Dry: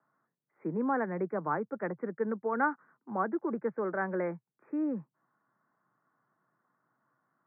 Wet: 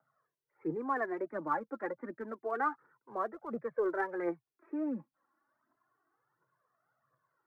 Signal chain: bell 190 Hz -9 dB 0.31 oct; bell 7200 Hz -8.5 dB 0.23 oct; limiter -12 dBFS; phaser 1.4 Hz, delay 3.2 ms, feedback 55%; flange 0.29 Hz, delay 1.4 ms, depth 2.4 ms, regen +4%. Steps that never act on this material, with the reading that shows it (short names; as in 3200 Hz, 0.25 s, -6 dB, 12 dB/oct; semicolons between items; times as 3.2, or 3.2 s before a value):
bell 7200 Hz: input band ends at 2200 Hz; limiter -12 dBFS: input peak -15.5 dBFS